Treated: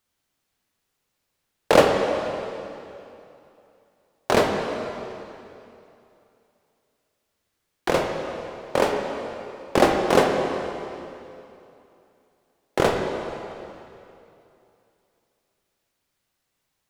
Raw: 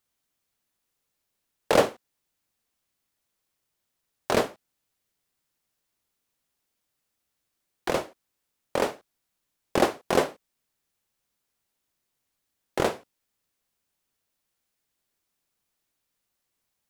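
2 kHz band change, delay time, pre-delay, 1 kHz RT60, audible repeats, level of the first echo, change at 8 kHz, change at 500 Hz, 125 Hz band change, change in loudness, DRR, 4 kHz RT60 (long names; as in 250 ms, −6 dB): +6.0 dB, no echo audible, 22 ms, 2.8 s, no echo audible, no echo audible, +2.5 dB, +6.5 dB, +7.0 dB, +3.5 dB, 2.5 dB, 2.5 s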